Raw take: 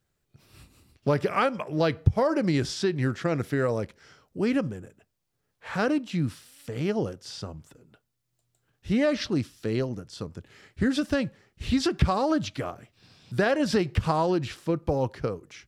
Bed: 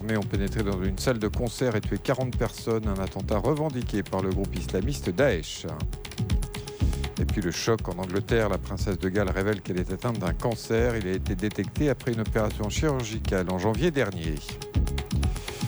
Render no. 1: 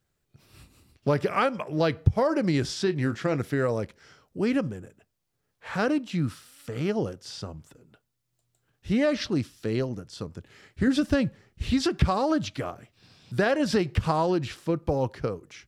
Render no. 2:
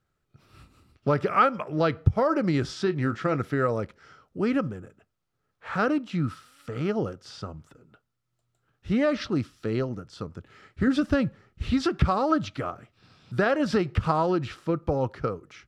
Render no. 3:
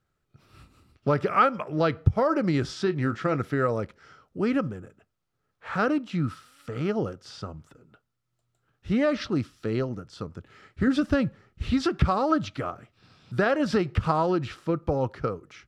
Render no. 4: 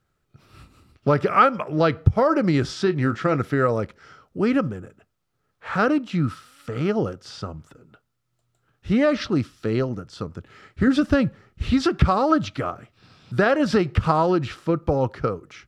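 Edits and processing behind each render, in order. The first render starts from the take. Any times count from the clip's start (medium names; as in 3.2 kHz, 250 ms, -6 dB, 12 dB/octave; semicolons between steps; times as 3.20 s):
2.84–3.36 s: doubling 27 ms -12 dB; 6.18–6.88 s: peaking EQ 1.3 kHz +8 dB 0.33 oct; 10.87–11.63 s: bass shelf 220 Hz +7.5 dB
low-pass 3.4 kHz 6 dB/octave; peaking EQ 1.3 kHz +10.5 dB 0.22 oct
no audible change
trim +4.5 dB; peak limiter -3 dBFS, peak gain reduction 1 dB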